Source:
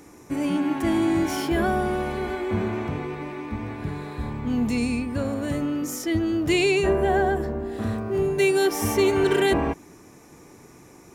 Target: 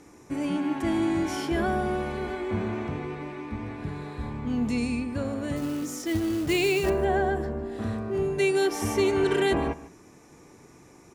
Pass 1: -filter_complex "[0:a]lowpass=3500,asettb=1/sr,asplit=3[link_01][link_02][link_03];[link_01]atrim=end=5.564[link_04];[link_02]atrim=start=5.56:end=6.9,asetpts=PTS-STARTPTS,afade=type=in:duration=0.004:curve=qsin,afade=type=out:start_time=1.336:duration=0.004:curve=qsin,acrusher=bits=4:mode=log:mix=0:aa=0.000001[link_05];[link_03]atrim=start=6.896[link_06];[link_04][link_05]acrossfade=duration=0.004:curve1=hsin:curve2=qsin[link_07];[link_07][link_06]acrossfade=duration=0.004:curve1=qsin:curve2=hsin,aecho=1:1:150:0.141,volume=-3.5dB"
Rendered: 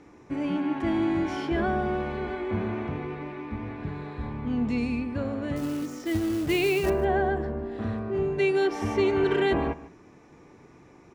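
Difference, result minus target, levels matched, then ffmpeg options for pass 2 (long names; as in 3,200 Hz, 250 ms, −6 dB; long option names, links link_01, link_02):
8,000 Hz band −8.5 dB
-filter_complex "[0:a]lowpass=10000,asettb=1/sr,asplit=3[link_01][link_02][link_03];[link_01]atrim=end=5.564[link_04];[link_02]atrim=start=5.56:end=6.9,asetpts=PTS-STARTPTS,afade=type=in:duration=0.004:curve=qsin,afade=type=out:start_time=1.336:duration=0.004:curve=qsin,acrusher=bits=4:mode=log:mix=0:aa=0.000001[link_05];[link_03]atrim=start=6.896[link_06];[link_04][link_05]acrossfade=duration=0.004:curve1=hsin:curve2=qsin[link_07];[link_07][link_06]acrossfade=duration=0.004:curve1=qsin:curve2=hsin,aecho=1:1:150:0.141,volume=-3.5dB"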